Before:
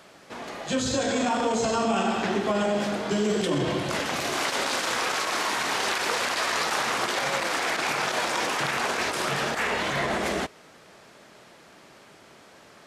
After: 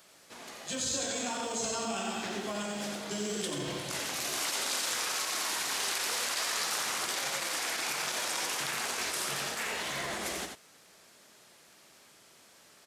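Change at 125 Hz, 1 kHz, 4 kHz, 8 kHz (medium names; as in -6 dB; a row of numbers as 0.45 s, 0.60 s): -11.5 dB, -10.5 dB, -4.0 dB, +1.0 dB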